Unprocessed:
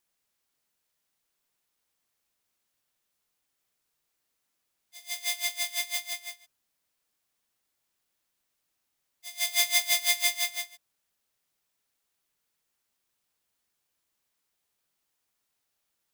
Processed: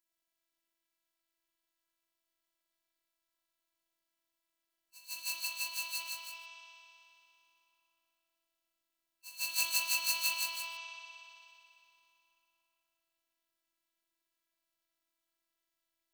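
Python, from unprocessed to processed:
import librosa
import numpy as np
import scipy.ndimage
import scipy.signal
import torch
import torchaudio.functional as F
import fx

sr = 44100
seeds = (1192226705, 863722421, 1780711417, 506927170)

y = fx.rev_spring(x, sr, rt60_s=2.9, pass_ms=(51,), chirp_ms=80, drr_db=-2.5)
y = fx.formant_shift(y, sr, semitones=4)
y = fx.robotise(y, sr, hz=331.0)
y = y * librosa.db_to_amplitude(-6.0)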